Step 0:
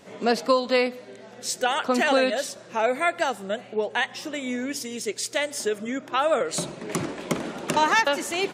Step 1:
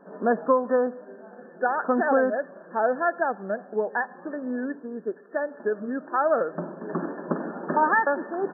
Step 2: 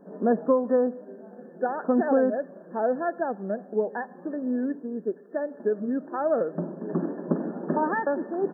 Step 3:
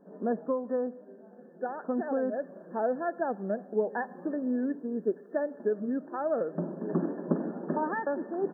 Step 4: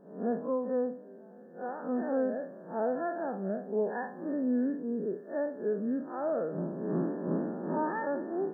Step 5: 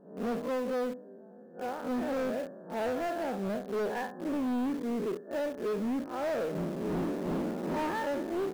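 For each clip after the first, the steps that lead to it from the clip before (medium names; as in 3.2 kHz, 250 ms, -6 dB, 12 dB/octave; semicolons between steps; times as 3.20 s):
FFT band-pass 160–1800 Hz
peaking EQ 1.4 kHz -14.5 dB 2 oct; trim +4.5 dB
gain riding 0.5 s; trim -4.5 dB
spectral blur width 103 ms; trim +1.5 dB
hard clipper -31 dBFS, distortion -10 dB; in parallel at -11.5 dB: word length cut 6-bit, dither none; on the sum: tape noise reduction on one side only decoder only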